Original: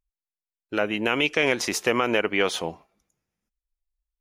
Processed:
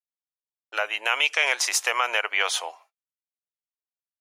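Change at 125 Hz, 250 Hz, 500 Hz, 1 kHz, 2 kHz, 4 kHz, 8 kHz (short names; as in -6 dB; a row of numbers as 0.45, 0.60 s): under -40 dB, under -25 dB, -9.0 dB, +1.5 dB, +2.5 dB, +3.0 dB, +6.0 dB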